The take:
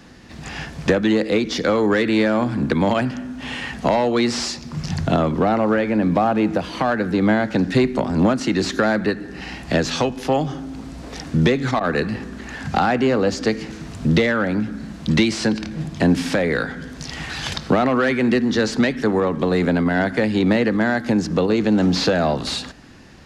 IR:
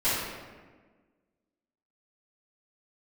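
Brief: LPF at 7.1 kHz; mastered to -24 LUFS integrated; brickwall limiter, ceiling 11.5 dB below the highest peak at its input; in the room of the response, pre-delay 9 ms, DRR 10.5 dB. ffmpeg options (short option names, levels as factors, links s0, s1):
-filter_complex "[0:a]lowpass=7100,alimiter=limit=0.15:level=0:latency=1,asplit=2[s0][s1];[1:a]atrim=start_sample=2205,adelay=9[s2];[s1][s2]afir=irnorm=-1:irlink=0,volume=0.0668[s3];[s0][s3]amix=inputs=2:normalize=0,volume=1.12"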